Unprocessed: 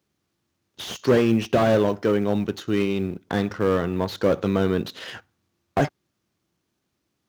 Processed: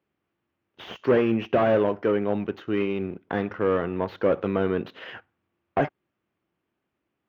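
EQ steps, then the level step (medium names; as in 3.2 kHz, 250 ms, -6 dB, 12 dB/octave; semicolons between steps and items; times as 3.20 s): distance through air 250 m; tone controls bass -7 dB, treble +10 dB; high-order bell 6.1 kHz -14.5 dB; 0.0 dB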